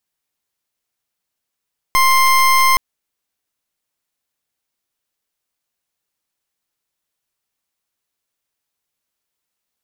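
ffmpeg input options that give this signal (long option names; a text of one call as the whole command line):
ffmpeg -f lavfi -i "aevalsrc='0.251*(2*lt(mod(1050*t,1),0.28)-1)':duration=0.82:sample_rate=44100" out.wav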